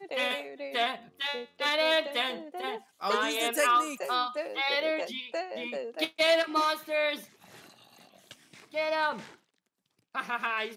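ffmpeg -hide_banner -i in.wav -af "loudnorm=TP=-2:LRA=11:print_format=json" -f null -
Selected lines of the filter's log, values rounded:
"input_i" : "-29.7",
"input_tp" : "-12.8",
"input_lra" : "6.2",
"input_thresh" : "-40.6",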